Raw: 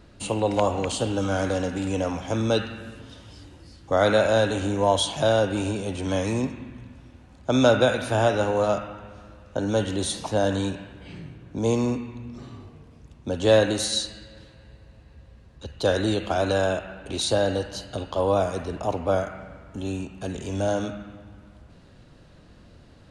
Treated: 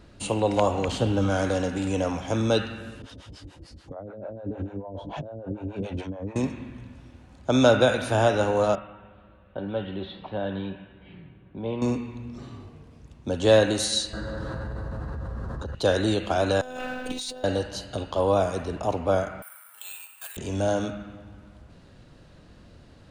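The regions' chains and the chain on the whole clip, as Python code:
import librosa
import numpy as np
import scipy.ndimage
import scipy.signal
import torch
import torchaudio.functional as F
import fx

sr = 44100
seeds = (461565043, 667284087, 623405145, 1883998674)

y = fx.chain(x, sr, fx.cvsd(bps=64000),
    fx.lowpass(hz=7500.0, slope=12),
    fx.bass_treble(bass_db=5, treble_db=-5), at=(0.88, 1.3))
y = fx.chain(y, sr, fx.env_lowpass_down(base_hz=550.0, full_db=-19.0),
    fx.over_compress(threshold_db=-30.0, ratio=-1.0),
    fx.harmonic_tremolo(hz=6.8, depth_pct=100, crossover_hz=500.0), at=(3.02, 6.36))
y = fx.chain(y, sr, fx.steep_lowpass(hz=3600.0, slope=48),
    fx.comb_fb(f0_hz=190.0, decay_s=0.17, harmonics='all', damping=0.0, mix_pct=70), at=(8.75, 11.82))
y = fx.chain(y, sr, fx.high_shelf_res(hz=1800.0, db=-10.0, q=3.0),
    fx.env_flatten(amount_pct=100), at=(14.13, 15.75))
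y = fx.chain(y, sr, fx.law_mismatch(coded='mu'),
    fx.over_compress(threshold_db=-32.0, ratio=-1.0),
    fx.robotise(hz=253.0), at=(16.61, 17.44))
y = fx.chain(y, sr, fx.highpass(hz=1100.0, slope=24),
    fx.resample_bad(factor=4, down='filtered', up='zero_stuff'), at=(19.42, 20.37))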